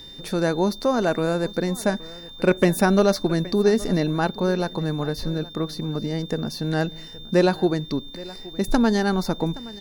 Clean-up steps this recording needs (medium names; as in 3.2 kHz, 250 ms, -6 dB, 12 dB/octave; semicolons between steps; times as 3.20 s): clip repair -8.5 dBFS; band-stop 3.6 kHz, Q 30; inverse comb 821 ms -19.5 dB